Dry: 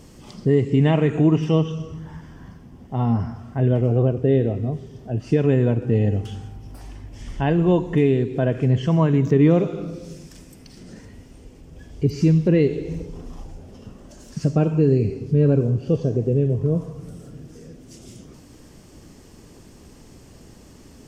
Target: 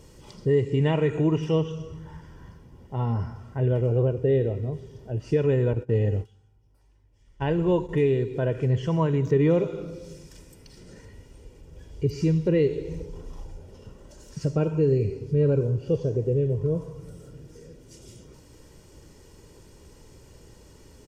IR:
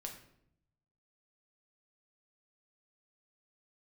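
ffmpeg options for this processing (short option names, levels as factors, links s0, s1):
-filter_complex "[0:a]asettb=1/sr,asplit=3[s0][s1][s2];[s0]atrim=end=5.734[s3];[s1]atrim=start=5.73:end=7.89,asetpts=PTS-STARTPTS,afade=t=in:d=0.004:c=qsin,afade=t=out:st=2.156:d=0.004:c=qsin,agate=range=0.0891:threshold=0.0631:ratio=16:detection=peak[s4];[s2]atrim=start=7.886[s5];[s3][s4]acrossfade=d=0.004:c1=hsin:c2=qsin[s6];[s6][s5]acrossfade=d=0.004:c1=qsin:c2=hsin,aecho=1:1:2.1:0.5,volume=0.562"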